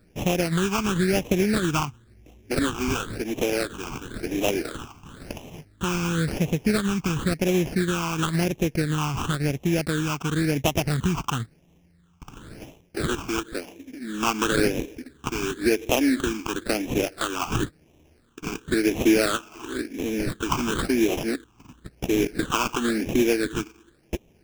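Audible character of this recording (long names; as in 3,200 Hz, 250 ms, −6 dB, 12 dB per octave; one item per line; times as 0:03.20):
aliases and images of a low sample rate 2,000 Hz, jitter 20%
phaser sweep stages 8, 0.96 Hz, lowest notch 530–1,400 Hz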